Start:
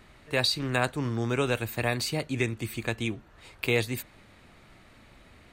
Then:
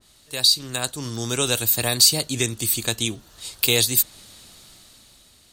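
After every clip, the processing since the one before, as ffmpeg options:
ffmpeg -i in.wav -af "dynaudnorm=framelen=310:gausssize=7:maxgain=11.5dB,aexciter=amount=7.6:drive=6.4:freq=3300,adynamicequalizer=threshold=0.0501:dfrequency=2100:dqfactor=0.7:tfrequency=2100:tqfactor=0.7:attack=5:release=100:ratio=0.375:range=1.5:mode=cutabove:tftype=highshelf,volume=-7dB" out.wav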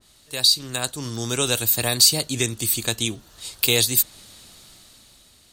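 ffmpeg -i in.wav -af anull out.wav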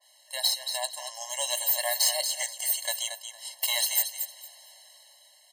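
ffmpeg -i in.wav -af "aecho=1:1:229|458|687:0.316|0.0601|0.0114,aeval=exprs='(tanh(4.47*val(0)+0.25)-tanh(0.25))/4.47':channel_layout=same,afftfilt=real='re*eq(mod(floor(b*sr/1024/550),2),1)':imag='im*eq(mod(floor(b*sr/1024/550),2),1)':win_size=1024:overlap=0.75" out.wav

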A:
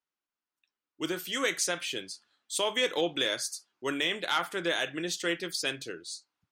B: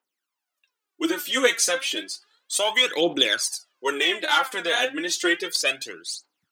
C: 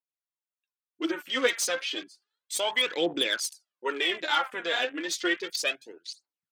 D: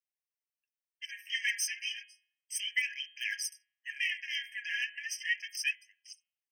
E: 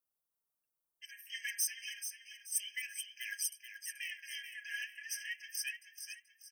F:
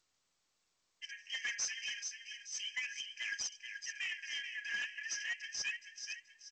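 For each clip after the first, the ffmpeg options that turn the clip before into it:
ffmpeg -i in.wav -af "aphaser=in_gain=1:out_gain=1:delay=4.4:decay=0.72:speed=0.32:type=triangular,highpass=300,volume=5dB" out.wav
ffmpeg -i in.wav -filter_complex "[0:a]afwtdn=0.0178,acrossover=split=2500[link_01][link_02];[link_02]asoftclip=type=hard:threshold=-19dB[link_03];[link_01][link_03]amix=inputs=2:normalize=0,volume=-5dB" out.wav
ffmpeg -i in.wav -af "bandreject=frequency=167.6:width_type=h:width=4,bandreject=frequency=335.2:width_type=h:width=4,bandreject=frequency=502.8:width_type=h:width=4,bandreject=frequency=670.4:width_type=h:width=4,bandreject=frequency=838:width_type=h:width=4,bandreject=frequency=1005.6:width_type=h:width=4,bandreject=frequency=1173.2:width_type=h:width=4,bandreject=frequency=1340.8:width_type=h:width=4,bandreject=frequency=1508.4:width_type=h:width=4,bandreject=frequency=1676:width_type=h:width=4,bandreject=frequency=1843.6:width_type=h:width=4,bandreject=frequency=2011.2:width_type=h:width=4,bandreject=frequency=2178.8:width_type=h:width=4,bandreject=frequency=2346.4:width_type=h:width=4,bandreject=frequency=2514:width_type=h:width=4,bandreject=frequency=2681.6:width_type=h:width=4,bandreject=frequency=2849.2:width_type=h:width=4,bandreject=frequency=3016.8:width_type=h:width=4,bandreject=frequency=3184.4:width_type=h:width=4,bandreject=frequency=3352:width_type=h:width=4,bandreject=frequency=3519.6:width_type=h:width=4,bandreject=frequency=3687.2:width_type=h:width=4,bandreject=frequency=3854.8:width_type=h:width=4,bandreject=frequency=4022.4:width_type=h:width=4,bandreject=frequency=4190:width_type=h:width=4,afftfilt=real='re*eq(mod(floor(b*sr/1024/1600),2),1)':imag='im*eq(mod(floor(b*sr/1024/1600),2),1)':win_size=1024:overlap=0.75,volume=-2dB" out.wav
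ffmpeg -i in.wav -filter_complex "[0:a]firequalizer=gain_entry='entry(1300,0);entry(1900,-16);entry(11000,3)':delay=0.05:min_phase=1,asplit=2[link_01][link_02];[link_02]aecho=0:1:432|864|1296|1728:0.376|0.139|0.0515|0.019[link_03];[link_01][link_03]amix=inputs=2:normalize=0,volume=4.5dB" out.wav
ffmpeg -i in.wav -af "aresample=16000,asoftclip=type=tanh:threshold=-36.5dB,aresample=44100,volume=5dB" -ar 16000 -c:a g722 out.g722

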